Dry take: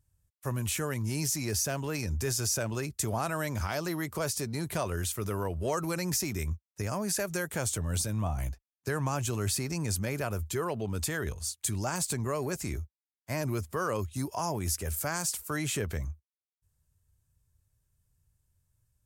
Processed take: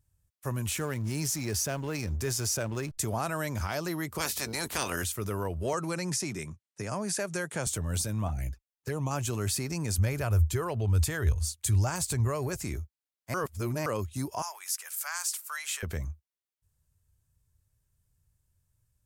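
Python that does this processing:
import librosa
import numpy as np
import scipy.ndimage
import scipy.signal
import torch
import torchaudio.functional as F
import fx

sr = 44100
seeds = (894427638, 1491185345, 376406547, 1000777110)

y = fx.backlash(x, sr, play_db=-41.0, at=(0.68, 2.98))
y = fx.spec_clip(y, sr, under_db=22, at=(4.18, 5.02), fade=0.02)
y = fx.ellip_bandpass(y, sr, low_hz=120.0, high_hz=9900.0, order=3, stop_db=40, at=(5.73, 7.67))
y = fx.env_flanger(y, sr, rest_ms=2.9, full_db=-27.0, at=(8.28, 9.11))
y = fx.low_shelf_res(y, sr, hz=130.0, db=10.0, q=1.5, at=(9.98, 12.62))
y = fx.highpass(y, sr, hz=1000.0, slope=24, at=(14.42, 15.83))
y = fx.edit(y, sr, fx.reverse_span(start_s=13.34, length_s=0.52), tone=tone)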